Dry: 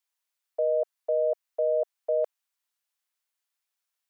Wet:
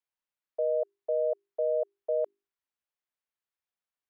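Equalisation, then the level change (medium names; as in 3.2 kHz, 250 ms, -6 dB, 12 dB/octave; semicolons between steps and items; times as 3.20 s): tone controls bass -3 dB, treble -10 dB; bass shelf 460 Hz +11 dB; hum notches 50/100/150/200/250/300/350/400 Hz; -7.0 dB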